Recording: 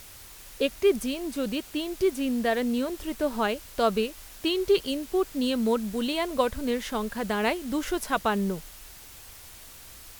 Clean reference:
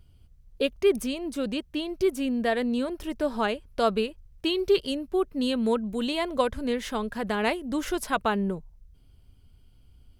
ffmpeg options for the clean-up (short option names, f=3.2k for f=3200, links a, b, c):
-af "afwtdn=0.0045"